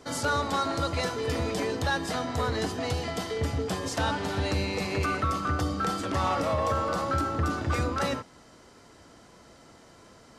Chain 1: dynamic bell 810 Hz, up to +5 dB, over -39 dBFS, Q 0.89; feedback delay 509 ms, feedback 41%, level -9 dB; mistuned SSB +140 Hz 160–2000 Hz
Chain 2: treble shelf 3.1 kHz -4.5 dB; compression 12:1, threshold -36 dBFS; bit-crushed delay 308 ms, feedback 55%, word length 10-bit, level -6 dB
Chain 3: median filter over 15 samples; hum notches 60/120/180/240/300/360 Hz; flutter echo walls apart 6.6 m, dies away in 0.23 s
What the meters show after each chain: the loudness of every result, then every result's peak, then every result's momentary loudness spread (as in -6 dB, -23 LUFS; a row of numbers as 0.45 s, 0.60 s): -26.5 LUFS, -39.0 LUFS, -29.5 LUFS; -12.0 dBFS, -25.5 dBFS, -16.0 dBFS; 8 LU, 14 LU, 4 LU